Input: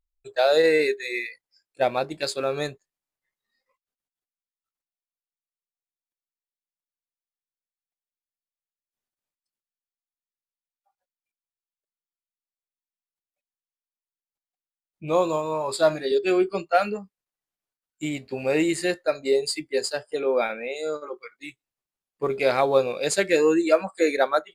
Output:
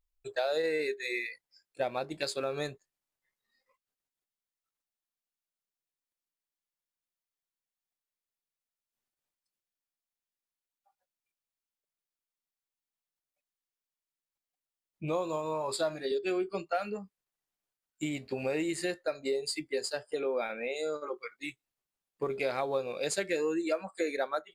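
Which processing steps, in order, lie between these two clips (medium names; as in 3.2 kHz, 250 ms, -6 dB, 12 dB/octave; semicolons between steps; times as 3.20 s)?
compression 3:1, threshold -32 dBFS, peak gain reduction 14.5 dB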